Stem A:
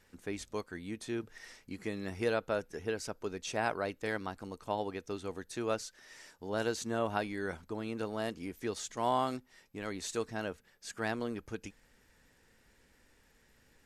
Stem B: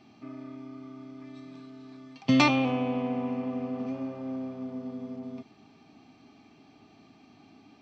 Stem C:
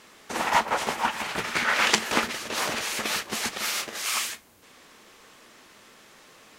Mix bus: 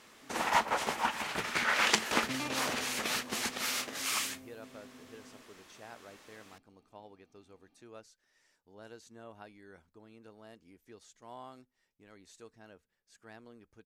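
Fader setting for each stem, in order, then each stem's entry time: -17.5 dB, -18.0 dB, -5.5 dB; 2.25 s, 0.00 s, 0.00 s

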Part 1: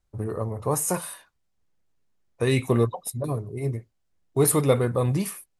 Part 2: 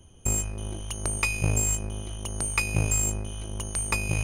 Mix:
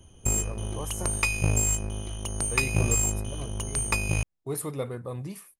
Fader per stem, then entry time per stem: -12.0 dB, +0.5 dB; 0.10 s, 0.00 s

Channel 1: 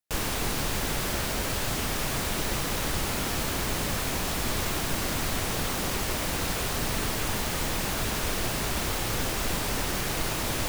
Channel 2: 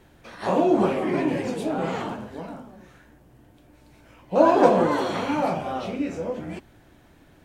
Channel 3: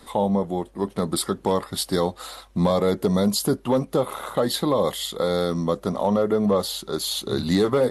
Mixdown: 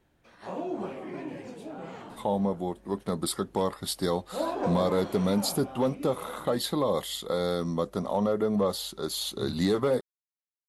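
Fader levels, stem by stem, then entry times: mute, -14.0 dB, -5.5 dB; mute, 0.00 s, 2.10 s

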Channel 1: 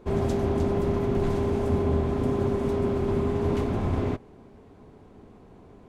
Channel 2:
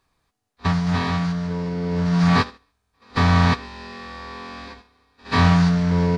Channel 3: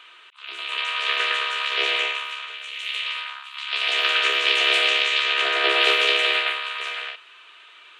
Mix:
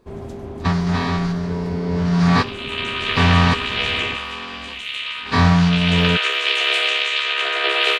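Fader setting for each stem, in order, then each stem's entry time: -7.0 dB, +1.5 dB, +0.5 dB; 0.00 s, 0.00 s, 2.00 s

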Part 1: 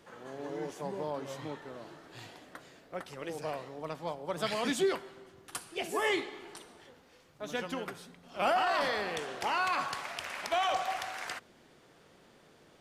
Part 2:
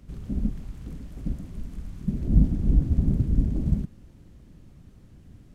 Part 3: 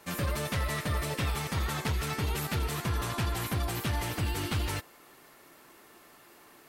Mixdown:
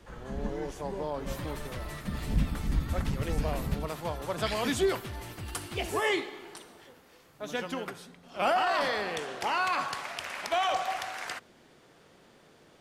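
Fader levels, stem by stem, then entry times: +2.0 dB, -9.0 dB, -9.5 dB; 0.00 s, 0.00 s, 1.20 s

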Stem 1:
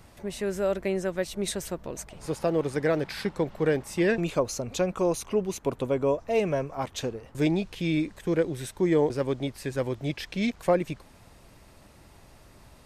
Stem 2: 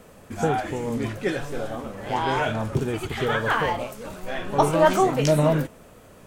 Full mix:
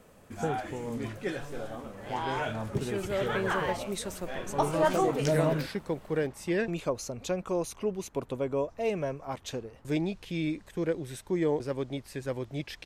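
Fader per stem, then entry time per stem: -5.0 dB, -8.0 dB; 2.50 s, 0.00 s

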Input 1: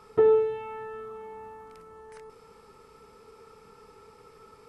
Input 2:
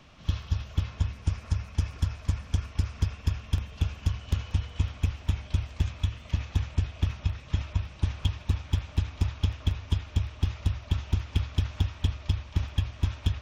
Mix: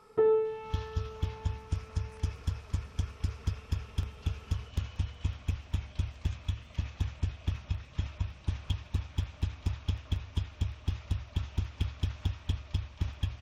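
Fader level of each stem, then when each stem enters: -5.0 dB, -5.5 dB; 0.00 s, 0.45 s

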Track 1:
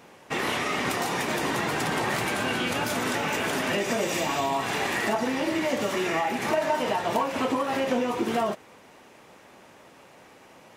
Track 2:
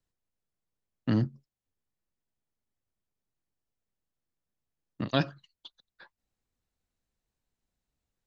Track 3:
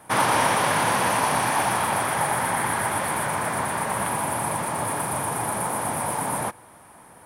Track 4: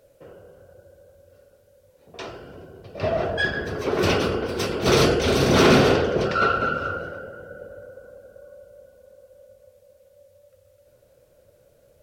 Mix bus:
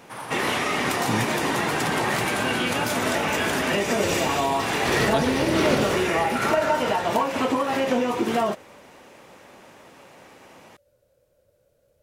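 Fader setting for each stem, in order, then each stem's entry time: +3.0 dB, -1.0 dB, -15.5 dB, -8.0 dB; 0.00 s, 0.00 s, 0.00 s, 0.00 s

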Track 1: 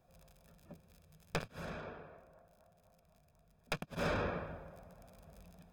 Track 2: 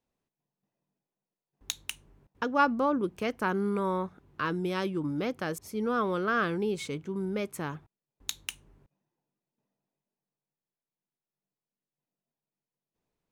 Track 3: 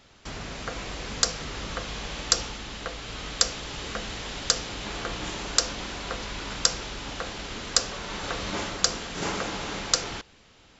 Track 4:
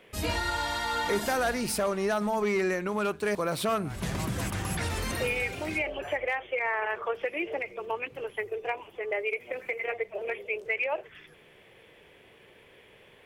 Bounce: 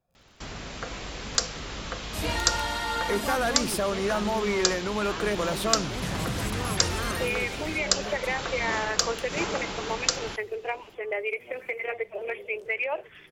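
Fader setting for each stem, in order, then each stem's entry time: -9.0 dB, -8.0 dB, -1.5 dB, +0.5 dB; 0.00 s, 0.70 s, 0.15 s, 2.00 s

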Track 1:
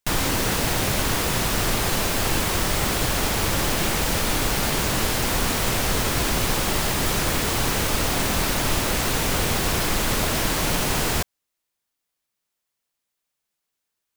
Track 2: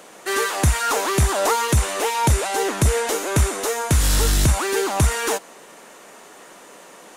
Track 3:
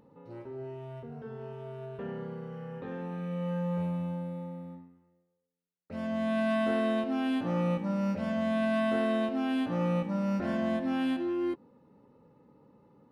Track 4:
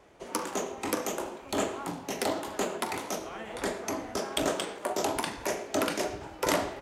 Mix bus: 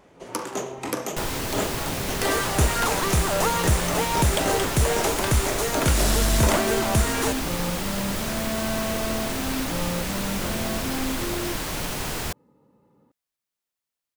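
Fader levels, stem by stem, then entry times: -6.5 dB, -4.0 dB, -1.0 dB, +2.0 dB; 1.10 s, 1.95 s, 0.00 s, 0.00 s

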